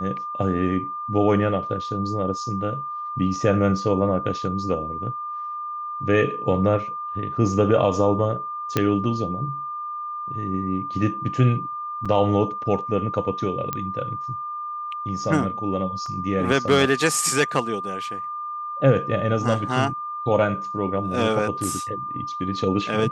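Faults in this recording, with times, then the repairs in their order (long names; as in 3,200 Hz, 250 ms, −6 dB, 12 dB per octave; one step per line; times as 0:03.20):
whistle 1,200 Hz −28 dBFS
0:08.77: click −6 dBFS
0:12.05–0:12.06: drop-out 5.9 ms
0:13.73: click −11 dBFS
0:16.06: drop-out 2.8 ms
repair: click removal
notch filter 1,200 Hz, Q 30
repair the gap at 0:12.05, 5.9 ms
repair the gap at 0:16.06, 2.8 ms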